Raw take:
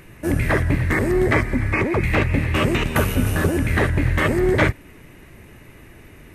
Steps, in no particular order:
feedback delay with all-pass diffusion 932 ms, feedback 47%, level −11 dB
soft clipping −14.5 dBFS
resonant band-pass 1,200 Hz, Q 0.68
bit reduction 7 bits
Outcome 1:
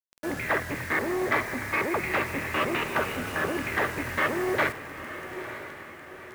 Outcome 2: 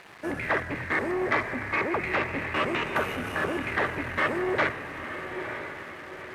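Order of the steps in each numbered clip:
soft clipping, then resonant band-pass, then bit reduction, then feedback delay with all-pass diffusion
bit reduction, then feedback delay with all-pass diffusion, then soft clipping, then resonant band-pass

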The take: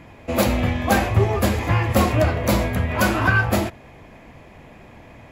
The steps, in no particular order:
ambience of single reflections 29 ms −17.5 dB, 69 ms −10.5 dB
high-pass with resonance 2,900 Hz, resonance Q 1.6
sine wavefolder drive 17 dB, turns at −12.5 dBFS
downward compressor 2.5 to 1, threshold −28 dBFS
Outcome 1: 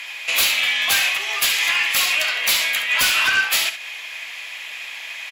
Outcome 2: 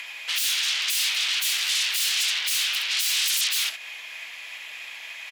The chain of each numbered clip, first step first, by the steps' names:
downward compressor, then high-pass with resonance, then sine wavefolder, then ambience of single reflections
ambience of single reflections, then sine wavefolder, then downward compressor, then high-pass with resonance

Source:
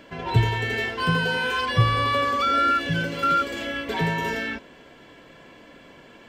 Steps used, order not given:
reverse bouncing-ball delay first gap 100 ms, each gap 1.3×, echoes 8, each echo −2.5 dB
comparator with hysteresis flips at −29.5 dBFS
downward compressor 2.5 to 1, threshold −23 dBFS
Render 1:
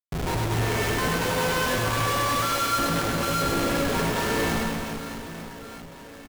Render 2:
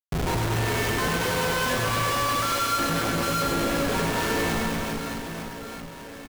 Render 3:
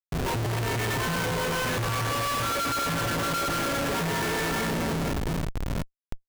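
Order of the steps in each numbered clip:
downward compressor, then comparator with hysteresis, then reverse bouncing-ball delay
comparator with hysteresis, then reverse bouncing-ball delay, then downward compressor
reverse bouncing-ball delay, then downward compressor, then comparator with hysteresis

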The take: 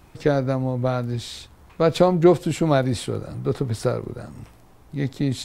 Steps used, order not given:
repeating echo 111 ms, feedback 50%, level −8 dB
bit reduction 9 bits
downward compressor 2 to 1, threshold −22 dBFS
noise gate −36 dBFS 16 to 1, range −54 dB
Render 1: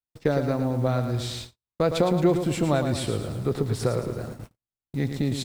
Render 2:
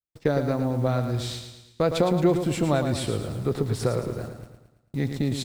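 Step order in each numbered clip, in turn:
downward compressor, then bit reduction, then repeating echo, then noise gate
downward compressor, then bit reduction, then noise gate, then repeating echo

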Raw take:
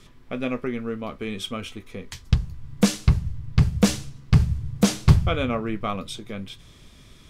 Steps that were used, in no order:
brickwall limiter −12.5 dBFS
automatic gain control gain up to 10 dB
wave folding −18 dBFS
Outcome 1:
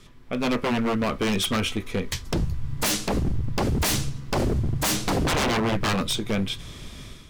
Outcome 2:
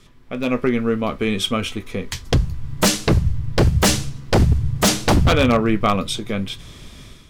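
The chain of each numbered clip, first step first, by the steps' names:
brickwall limiter, then automatic gain control, then wave folding
wave folding, then brickwall limiter, then automatic gain control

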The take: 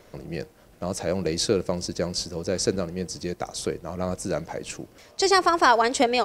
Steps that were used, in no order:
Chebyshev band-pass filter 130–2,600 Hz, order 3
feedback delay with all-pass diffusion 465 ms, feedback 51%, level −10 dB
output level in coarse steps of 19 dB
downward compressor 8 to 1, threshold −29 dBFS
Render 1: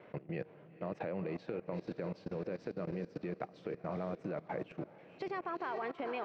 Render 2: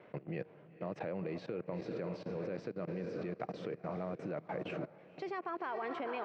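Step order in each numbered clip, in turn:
Chebyshev band-pass filter, then downward compressor, then feedback delay with all-pass diffusion, then output level in coarse steps
feedback delay with all-pass diffusion, then downward compressor, then output level in coarse steps, then Chebyshev band-pass filter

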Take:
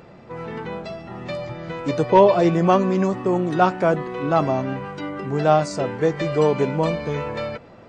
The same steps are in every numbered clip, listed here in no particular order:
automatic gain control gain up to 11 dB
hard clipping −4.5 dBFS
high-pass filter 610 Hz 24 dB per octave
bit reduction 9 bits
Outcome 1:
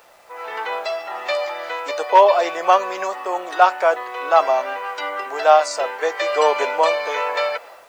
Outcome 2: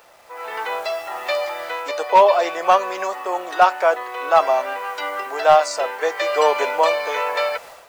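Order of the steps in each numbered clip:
hard clipping, then high-pass filter, then automatic gain control, then bit reduction
high-pass filter, then bit reduction, then automatic gain control, then hard clipping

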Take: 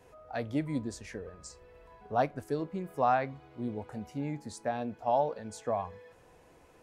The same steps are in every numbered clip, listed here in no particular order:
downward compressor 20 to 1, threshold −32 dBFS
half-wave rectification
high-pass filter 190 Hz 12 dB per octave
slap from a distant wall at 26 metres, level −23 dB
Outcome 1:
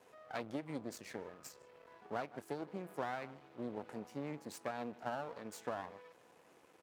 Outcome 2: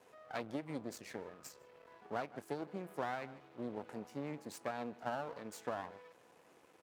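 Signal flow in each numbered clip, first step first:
slap from a distant wall, then downward compressor, then half-wave rectification, then high-pass filter
half-wave rectification, then slap from a distant wall, then downward compressor, then high-pass filter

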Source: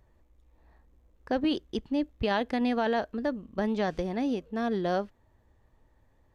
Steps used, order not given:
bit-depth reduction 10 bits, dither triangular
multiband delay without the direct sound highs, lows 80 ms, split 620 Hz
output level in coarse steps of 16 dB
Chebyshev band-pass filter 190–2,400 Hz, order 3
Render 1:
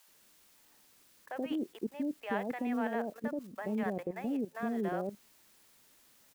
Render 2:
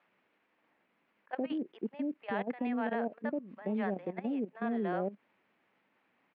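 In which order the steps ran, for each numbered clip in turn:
Chebyshev band-pass filter, then bit-depth reduction, then output level in coarse steps, then multiband delay without the direct sound
multiband delay without the direct sound, then bit-depth reduction, then output level in coarse steps, then Chebyshev band-pass filter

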